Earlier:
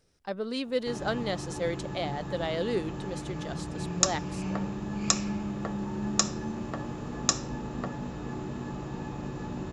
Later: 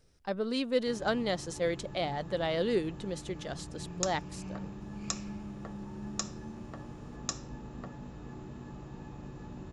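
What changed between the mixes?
background −10.5 dB
master: add low-shelf EQ 98 Hz +8 dB

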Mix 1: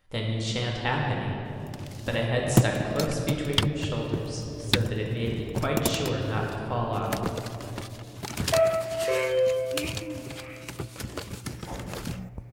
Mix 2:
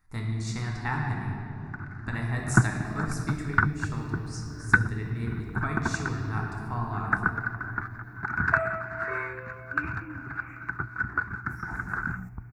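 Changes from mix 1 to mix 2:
first sound: add low-pass with resonance 1,500 Hz, resonance Q 14
master: add phaser with its sweep stopped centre 1,300 Hz, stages 4

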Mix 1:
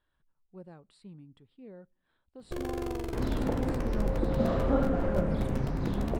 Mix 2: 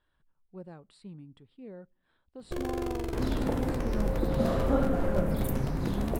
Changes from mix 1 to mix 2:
speech +3.0 dB
first sound: send +11.5 dB
second sound: remove high-frequency loss of the air 110 metres

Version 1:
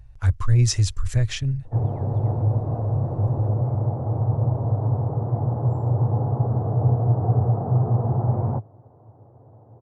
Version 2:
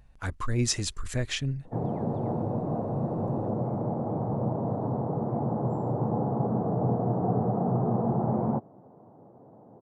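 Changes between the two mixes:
speech: add parametric band 5,600 Hz −3.5 dB 0.41 octaves
master: add low shelf with overshoot 140 Hz −9.5 dB, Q 3

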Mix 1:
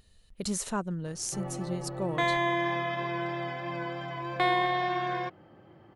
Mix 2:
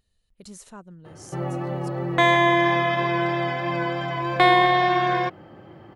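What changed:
speech −11.0 dB
background +9.5 dB

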